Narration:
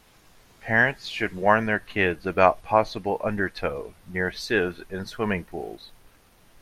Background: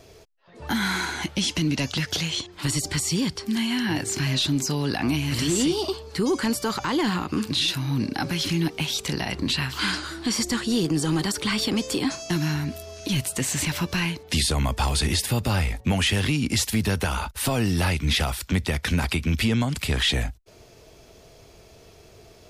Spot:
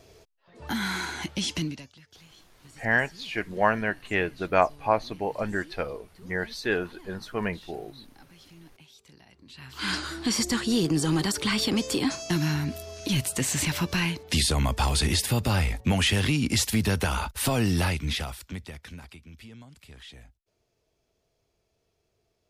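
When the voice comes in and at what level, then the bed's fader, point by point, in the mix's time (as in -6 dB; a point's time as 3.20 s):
2.15 s, -3.5 dB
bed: 1.62 s -4.5 dB
1.94 s -27.5 dB
9.46 s -27.5 dB
9.93 s -1 dB
17.76 s -1 dB
19.26 s -24.5 dB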